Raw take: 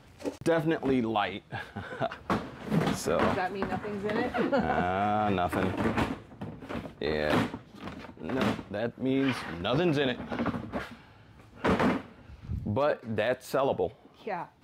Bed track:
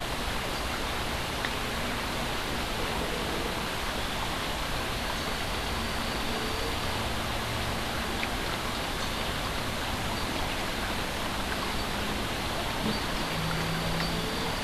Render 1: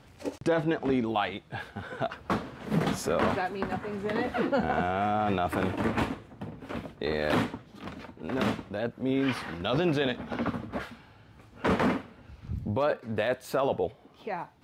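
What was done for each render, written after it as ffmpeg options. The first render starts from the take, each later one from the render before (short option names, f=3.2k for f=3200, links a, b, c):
-filter_complex "[0:a]asettb=1/sr,asplit=3[a][b][c];[a]atrim=end=0.404[d];[b]atrim=start=0.4:end=1.04,asetpts=PTS-STARTPTS,afade=t=in:d=0.004:c=qsin,afade=t=out:st=0.636:d=0.004:c=qsin,lowpass=7.7k[e];[c]atrim=start=1.036[f];[d][e]acrossfade=d=0.004:c1=hsin:c2=qsin[g];[g][f]acrossfade=d=0.004:c1=qsin:c2=hsin"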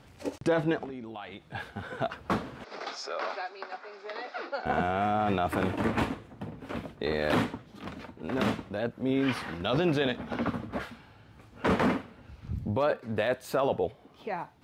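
-filter_complex "[0:a]asettb=1/sr,asplit=3[a][b][c];[a]atrim=end=0.844[d];[b]atrim=start=0.84:end=1.55,asetpts=PTS-STARTPTS,afade=t=in:d=0.004:c=qsin,afade=t=out:st=0.706:d=0.004:c=qsin,acompressor=threshold=-39dB:ratio=4:attack=3.2:release=140:knee=1:detection=peak[e];[c]atrim=start=1.546[f];[d][e]acrossfade=d=0.004:c1=hsin:c2=qsin[g];[g][f]acrossfade=d=0.004:c1=qsin:c2=hsin,asettb=1/sr,asplit=3[h][i][j];[h]atrim=end=2.644[k];[i]atrim=start=2.64:end=4.66,asetpts=PTS-STARTPTS,afade=t=in:d=0.004:c=qsin,afade=t=out:st=2.016:d=0.004:c=qsin,highpass=f=490:w=0.5412,highpass=f=490:w=1.3066,equalizer=f=490:t=q:w=4:g=-9,equalizer=f=700:t=q:w=4:g=-4,equalizer=f=1k:t=q:w=4:g=-7,equalizer=f=1.8k:t=q:w=4:g=-7,equalizer=f=3k:t=q:w=4:g=-9,equalizer=f=5.1k:t=q:w=4:g=8,lowpass=f=5.3k:w=0.5412,lowpass=f=5.3k:w=1.3066[l];[j]atrim=start=4.656[m];[k][l]acrossfade=d=0.004:c1=hsin:c2=qsin[n];[n][m]acrossfade=d=0.004:c1=qsin:c2=hsin"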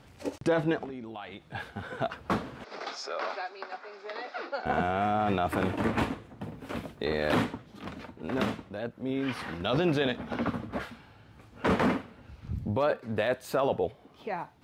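-filter_complex "[0:a]asettb=1/sr,asplit=3[a][b][c];[a]atrim=end=6.434[d];[b]atrim=start=6.43:end=7.04,asetpts=PTS-STARTPTS,afade=t=in:d=0.004:c=qsin,afade=t=out:st=0.606:d=0.004:c=qsin,highshelf=f=6k:g=8[e];[c]atrim=start=7.036[f];[d][e]acrossfade=d=0.004:c1=hsin:c2=qsin[g];[g][f]acrossfade=d=0.004:c1=qsin:c2=hsin,asplit=3[h][i][j];[h]atrim=end=8.452[k];[i]atrim=start=8.448:end=9.392,asetpts=PTS-STARTPTS,volume=-4dB[l];[j]atrim=start=9.388[m];[k][l]acrossfade=d=0.004:c1=hsin:c2=hsin[n];[n][m]acrossfade=d=0.004:c1=hsin:c2=hsin"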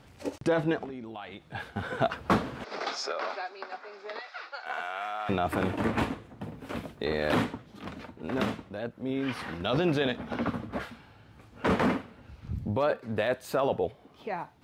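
-filter_complex "[0:a]asettb=1/sr,asplit=3[a][b][c];[a]atrim=end=4.194[d];[b]atrim=start=4.19:end=5.29,asetpts=PTS-STARTPTS,afade=t=in:d=0.004:c=qsin,afade=t=out:st=1.096:d=0.004:c=qsin,highpass=1.1k[e];[c]atrim=start=5.286[f];[d][e]acrossfade=d=0.004:c1=hsin:c2=qsin[g];[g][f]acrossfade=d=0.004:c1=qsin:c2=hsin,asplit=3[h][i][j];[h]atrim=end=1.762[k];[i]atrim=start=1.758:end=3.122,asetpts=PTS-STARTPTS,volume=4.5dB[l];[j]atrim=start=3.118[m];[k][l]acrossfade=d=0.004:c1=hsin:c2=hsin[n];[n][m]acrossfade=d=0.004:c1=hsin:c2=hsin"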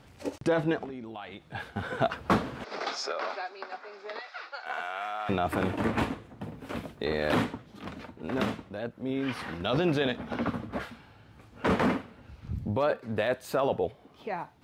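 -af anull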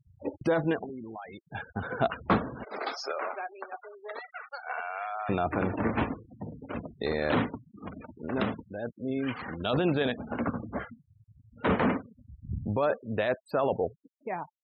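-af "adynamicequalizer=threshold=0.00282:dfrequency=5300:dqfactor=1:tfrequency=5300:tqfactor=1:attack=5:release=100:ratio=0.375:range=3:mode=cutabove:tftype=bell,afftfilt=real='re*gte(hypot(re,im),0.0141)':imag='im*gte(hypot(re,im),0.0141)':win_size=1024:overlap=0.75"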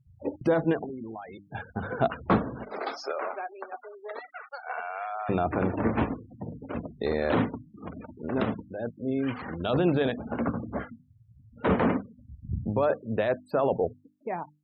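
-af "tiltshelf=f=1.2k:g=3.5,bandreject=f=50:t=h:w=6,bandreject=f=100:t=h:w=6,bandreject=f=150:t=h:w=6,bandreject=f=200:t=h:w=6,bandreject=f=250:t=h:w=6,bandreject=f=300:t=h:w=6"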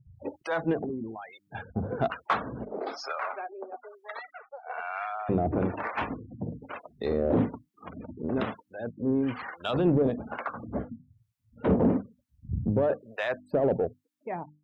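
-filter_complex "[0:a]acrossover=split=720[a][b];[a]aeval=exprs='val(0)*(1-1/2+1/2*cos(2*PI*1.1*n/s))':c=same[c];[b]aeval=exprs='val(0)*(1-1/2-1/2*cos(2*PI*1.1*n/s))':c=same[d];[c][d]amix=inputs=2:normalize=0,asplit=2[e][f];[f]asoftclip=type=tanh:threshold=-26.5dB,volume=-3dB[g];[e][g]amix=inputs=2:normalize=0"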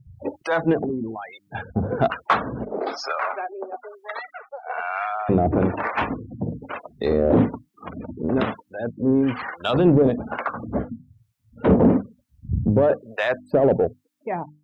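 -af "volume=7.5dB"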